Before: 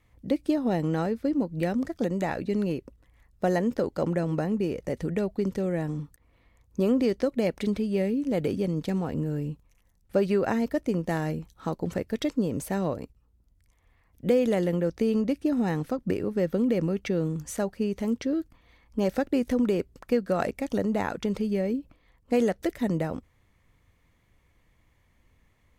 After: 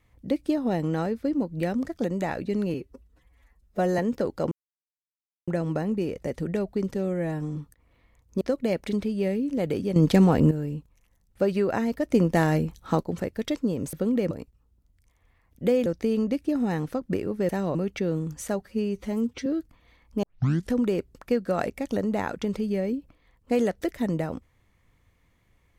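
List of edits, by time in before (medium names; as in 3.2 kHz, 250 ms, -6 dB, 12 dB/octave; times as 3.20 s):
2.74–3.57 s: stretch 1.5×
4.10 s: insert silence 0.96 s
5.57–5.98 s: stretch 1.5×
6.83–7.15 s: delete
8.70–9.25 s: gain +10.5 dB
10.84–11.77 s: gain +6.5 dB
12.67–12.93 s: swap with 16.46–16.84 s
14.48–14.83 s: delete
17.71–18.27 s: stretch 1.5×
19.04 s: tape start 0.50 s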